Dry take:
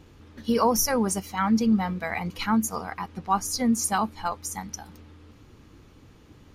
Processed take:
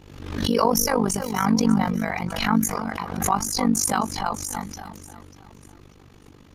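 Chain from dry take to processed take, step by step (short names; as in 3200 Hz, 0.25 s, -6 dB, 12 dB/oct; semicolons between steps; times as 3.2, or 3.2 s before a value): on a send: echo with dull and thin repeats by turns 0.296 s, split 1700 Hz, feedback 54%, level -10.5 dB; on the sum: transient shaper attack -1 dB, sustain +5 dB; AM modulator 49 Hz, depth 75%; backwards sustainer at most 61 dB/s; gain +4 dB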